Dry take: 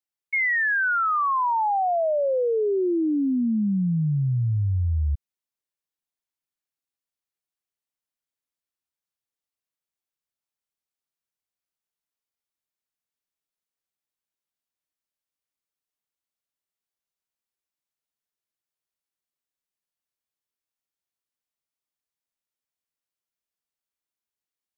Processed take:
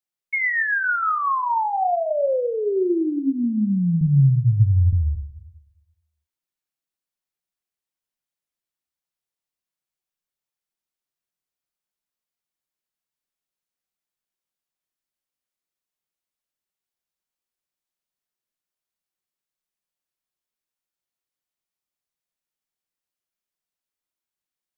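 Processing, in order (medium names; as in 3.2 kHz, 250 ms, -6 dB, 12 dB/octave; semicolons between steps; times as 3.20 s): 4.01–4.93 s: bass shelf 140 Hz +10 dB; reverberation RT60 0.60 s, pre-delay 5 ms, DRR 7.5 dB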